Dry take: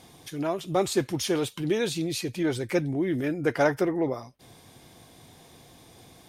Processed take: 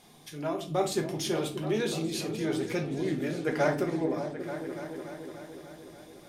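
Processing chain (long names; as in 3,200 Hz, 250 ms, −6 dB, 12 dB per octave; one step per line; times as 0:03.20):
low-shelf EQ 220 Hz −5 dB
on a send: echo whose low-pass opens from repeat to repeat 293 ms, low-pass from 200 Hz, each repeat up 2 octaves, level −6 dB
on the sum: rectangular room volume 270 cubic metres, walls furnished, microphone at 1.3 metres
level −5 dB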